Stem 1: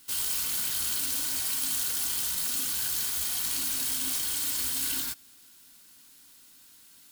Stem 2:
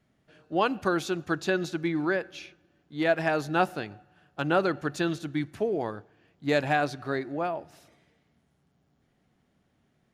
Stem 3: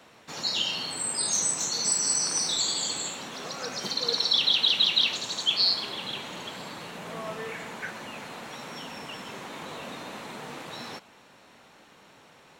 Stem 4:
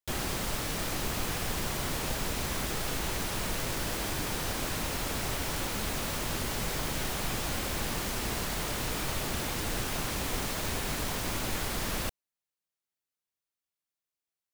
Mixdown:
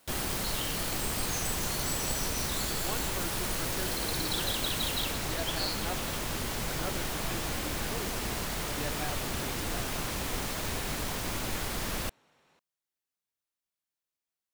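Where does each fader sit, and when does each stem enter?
-9.5 dB, -15.5 dB, -13.0 dB, -1.0 dB; 0.00 s, 2.30 s, 0.00 s, 0.00 s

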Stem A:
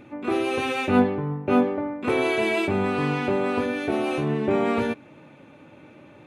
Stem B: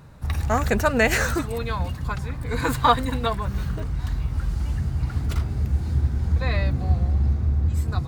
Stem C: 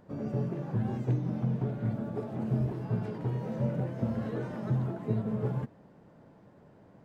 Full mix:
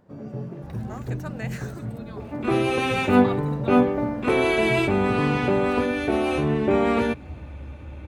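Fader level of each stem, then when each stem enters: +2.0 dB, -17.5 dB, -1.5 dB; 2.20 s, 0.40 s, 0.00 s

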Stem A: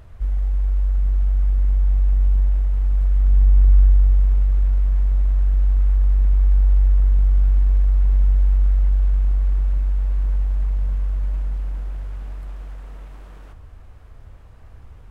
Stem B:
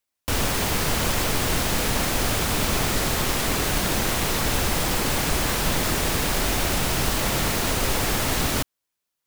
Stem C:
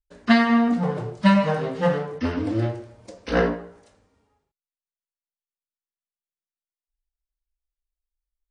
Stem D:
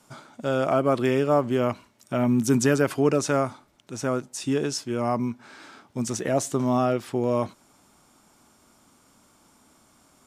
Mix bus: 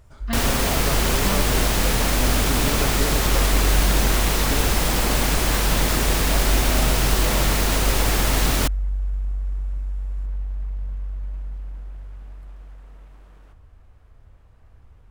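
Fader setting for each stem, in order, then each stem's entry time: -7.5 dB, +1.5 dB, -13.5 dB, -9.5 dB; 0.00 s, 0.05 s, 0.00 s, 0.00 s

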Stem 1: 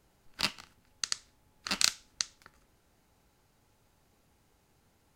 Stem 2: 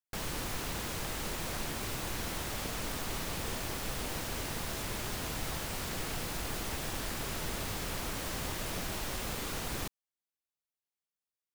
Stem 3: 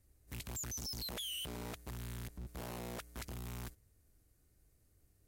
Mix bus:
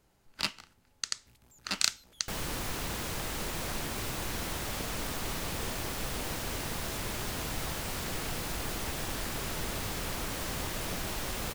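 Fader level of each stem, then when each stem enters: -1.0 dB, +1.5 dB, -18.5 dB; 0.00 s, 2.15 s, 0.95 s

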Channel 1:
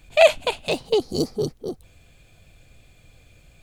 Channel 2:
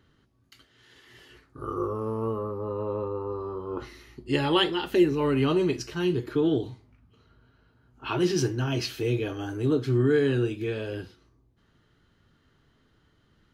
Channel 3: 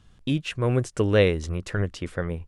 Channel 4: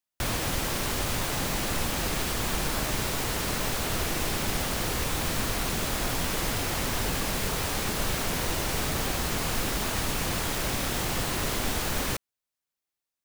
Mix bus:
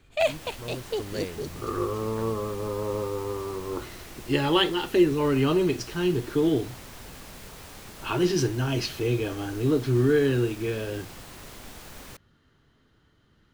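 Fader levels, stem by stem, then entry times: -10.0 dB, +1.0 dB, -15.5 dB, -15.0 dB; 0.00 s, 0.00 s, 0.00 s, 0.00 s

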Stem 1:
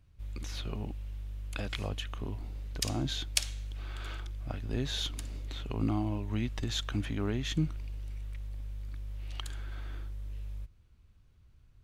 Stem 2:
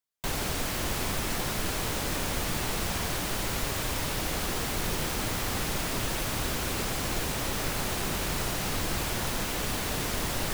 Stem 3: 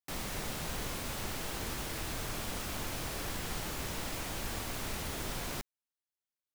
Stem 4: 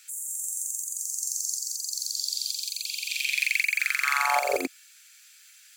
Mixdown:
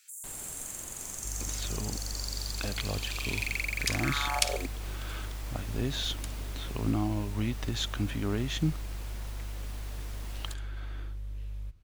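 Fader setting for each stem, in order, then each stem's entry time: +1.5 dB, -17.0 dB, -12.0 dB, -8.5 dB; 1.05 s, 0.00 s, 1.30 s, 0.00 s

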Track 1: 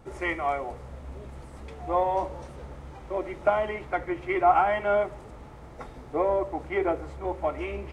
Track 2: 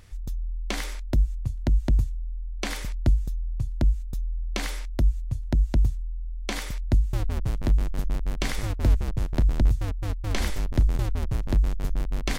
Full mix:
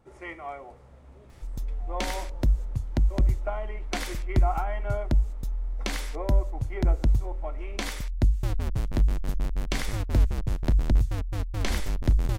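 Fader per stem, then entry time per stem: -10.0 dB, -1.0 dB; 0.00 s, 1.30 s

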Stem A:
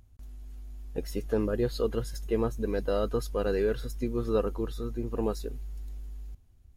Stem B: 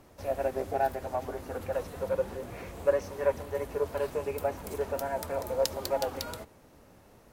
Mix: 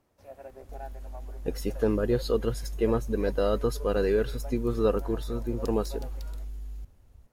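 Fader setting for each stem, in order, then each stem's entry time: +2.5 dB, -15.0 dB; 0.50 s, 0.00 s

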